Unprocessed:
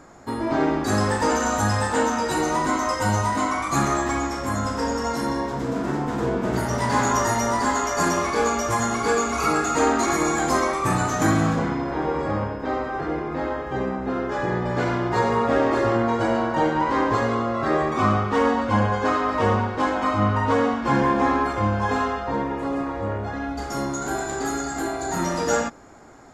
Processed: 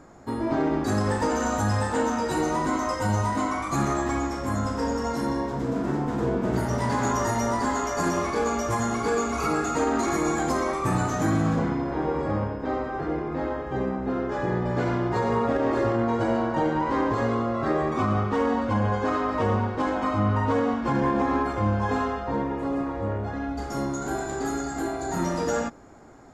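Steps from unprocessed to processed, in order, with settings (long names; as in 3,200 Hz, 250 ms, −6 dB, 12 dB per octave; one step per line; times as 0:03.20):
brickwall limiter −12.5 dBFS, peak gain reduction 6 dB
tilt shelving filter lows +3 dB, about 740 Hz
level −3 dB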